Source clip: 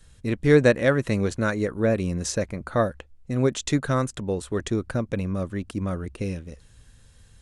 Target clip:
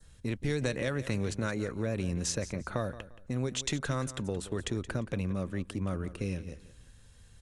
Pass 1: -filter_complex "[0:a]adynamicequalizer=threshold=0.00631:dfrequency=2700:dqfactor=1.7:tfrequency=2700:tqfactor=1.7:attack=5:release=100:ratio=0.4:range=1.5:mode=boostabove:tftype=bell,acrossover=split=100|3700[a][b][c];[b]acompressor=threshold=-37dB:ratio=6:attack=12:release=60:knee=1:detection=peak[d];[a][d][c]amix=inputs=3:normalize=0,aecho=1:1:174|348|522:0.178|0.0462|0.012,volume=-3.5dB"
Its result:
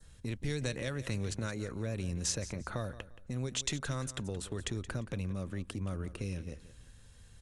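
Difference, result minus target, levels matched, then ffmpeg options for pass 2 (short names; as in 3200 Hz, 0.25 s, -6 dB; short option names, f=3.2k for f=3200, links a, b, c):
compressor: peak gain reduction +6.5 dB
-filter_complex "[0:a]adynamicequalizer=threshold=0.00631:dfrequency=2700:dqfactor=1.7:tfrequency=2700:tqfactor=1.7:attack=5:release=100:ratio=0.4:range=1.5:mode=boostabove:tftype=bell,acrossover=split=100|3700[a][b][c];[b]acompressor=threshold=-29.5dB:ratio=6:attack=12:release=60:knee=1:detection=peak[d];[a][d][c]amix=inputs=3:normalize=0,aecho=1:1:174|348|522:0.178|0.0462|0.012,volume=-3.5dB"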